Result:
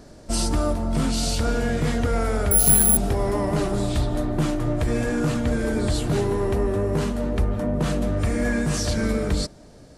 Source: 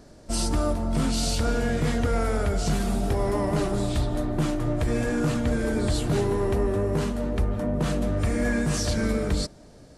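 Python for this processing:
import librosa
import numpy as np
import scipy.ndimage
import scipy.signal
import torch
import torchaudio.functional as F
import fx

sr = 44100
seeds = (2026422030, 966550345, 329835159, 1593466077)

p1 = fx.rider(x, sr, range_db=10, speed_s=0.5)
p2 = x + F.gain(torch.from_numpy(p1), -2.5).numpy()
p3 = fx.resample_bad(p2, sr, factor=4, down='filtered', up='zero_stuff', at=(2.51, 2.97))
y = F.gain(torch.from_numpy(p3), -3.0).numpy()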